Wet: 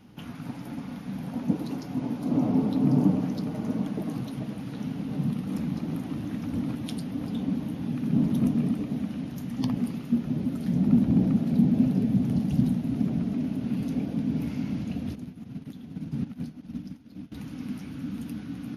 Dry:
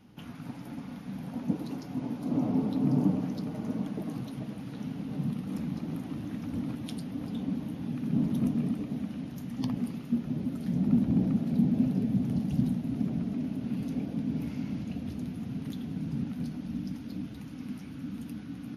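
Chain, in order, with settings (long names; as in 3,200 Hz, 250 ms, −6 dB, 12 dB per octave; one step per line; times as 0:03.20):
0:15.15–0:17.32: expander for the loud parts 2.5 to 1, over −42 dBFS
level +4 dB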